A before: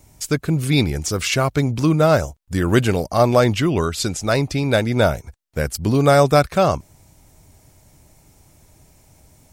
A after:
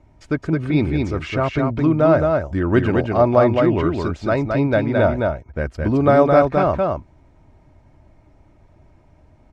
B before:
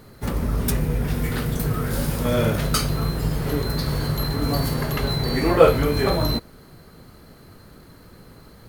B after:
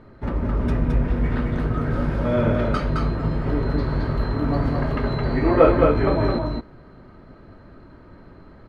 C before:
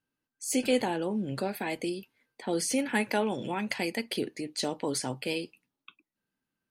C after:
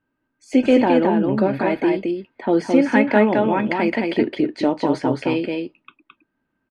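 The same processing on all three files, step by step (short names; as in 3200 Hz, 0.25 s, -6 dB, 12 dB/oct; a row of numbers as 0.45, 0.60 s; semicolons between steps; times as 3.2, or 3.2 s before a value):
LPF 1800 Hz 12 dB/oct; comb 3.2 ms, depth 30%; on a send: echo 0.216 s -3.5 dB; on the sum: normalise peaks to -2 dBFS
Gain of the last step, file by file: -1.0, 0.0, +11.5 dB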